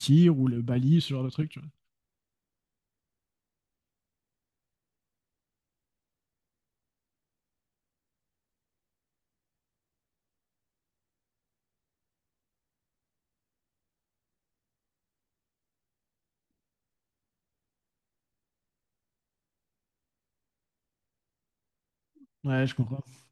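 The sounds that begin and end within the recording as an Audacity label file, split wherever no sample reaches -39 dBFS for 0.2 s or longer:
22.440000	23.010000	sound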